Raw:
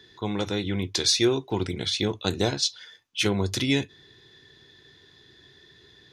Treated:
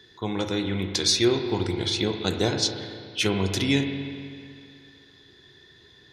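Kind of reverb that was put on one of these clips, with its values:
spring reverb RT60 2.3 s, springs 36/42 ms, chirp 30 ms, DRR 5.5 dB

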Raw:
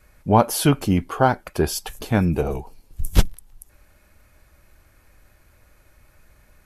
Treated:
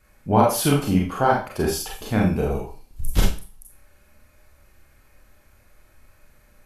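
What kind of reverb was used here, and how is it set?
four-comb reverb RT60 0.37 s, combs from 29 ms, DRR −2 dB
level −4.5 dB

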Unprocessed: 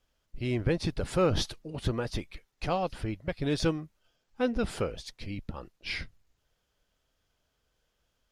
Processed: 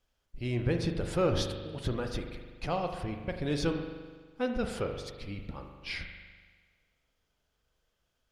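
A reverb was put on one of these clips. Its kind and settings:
spring reverb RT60 1.5 s, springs 41 ms, chirp 35 ms, DRR 5 dB
level −3 dB

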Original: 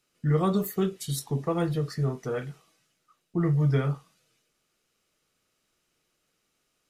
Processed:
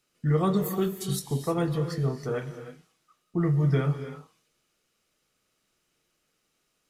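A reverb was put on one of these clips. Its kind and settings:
reverb whose tail is shaped and stops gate 340 ms rising, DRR 9.5 dB

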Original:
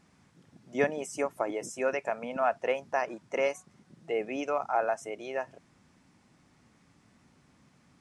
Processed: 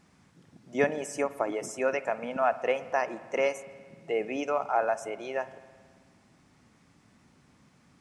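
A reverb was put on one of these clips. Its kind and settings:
spring reverb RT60 1.8 s, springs 54 ms, chirp 30 ms, DRR 15 dB
level +1.5 dB

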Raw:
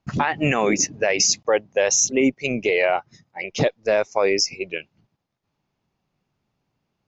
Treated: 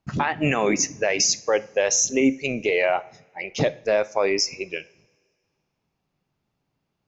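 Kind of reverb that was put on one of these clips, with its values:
coupled-rooms reverb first 0.41 s, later 2 s, from −21 dB, DRR 14 dB
level −2 dB

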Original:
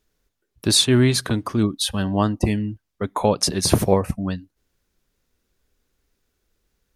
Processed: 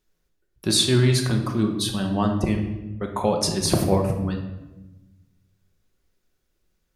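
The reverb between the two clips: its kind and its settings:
rectangular room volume 530 cubic metres, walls mixed, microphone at 1 metre
level −4.5 dB

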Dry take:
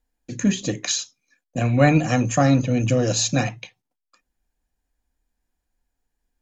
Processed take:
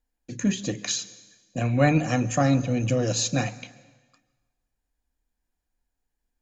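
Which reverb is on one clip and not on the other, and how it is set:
dense smooth reverb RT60 1.3 s, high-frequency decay 0.95×, pre-delay 120 ms, DRR 18.5 dB
level −4 dB

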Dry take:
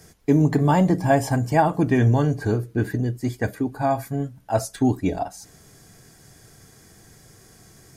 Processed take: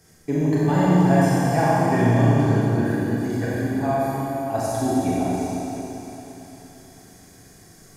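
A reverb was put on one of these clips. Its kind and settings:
four-comb reverb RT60 3.7 s, combs from 30 ms, DRR −8 dB
level −7 dB

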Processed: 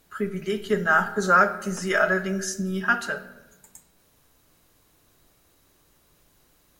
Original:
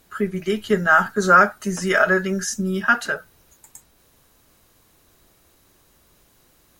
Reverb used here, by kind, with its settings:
rectangular room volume 500 cubic metres, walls mixed, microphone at 0.41 metres
level −4.5 dB

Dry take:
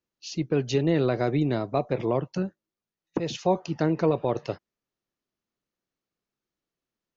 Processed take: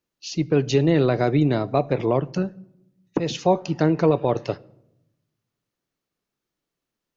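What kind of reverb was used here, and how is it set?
rectangular room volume 2,800 cubic metres, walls furnished, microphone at 0.34 metres
level +4.5 dB

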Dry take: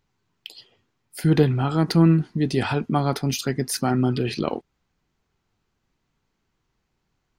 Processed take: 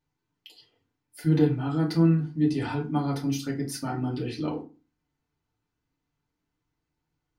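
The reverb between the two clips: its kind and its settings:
feedback delay network reverb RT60 0.32 s, low-frequency decay 1.4×, high-frequency decay 0.7×, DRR −3.5 dB
level −13.5 dB

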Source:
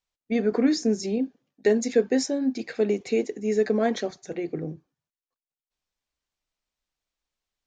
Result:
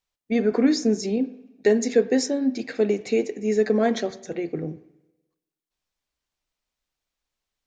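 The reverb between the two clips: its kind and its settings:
spring reverb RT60 1 s, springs 47/55 ms, chirp 75 ms, DRR 16 dB
level +2 dB

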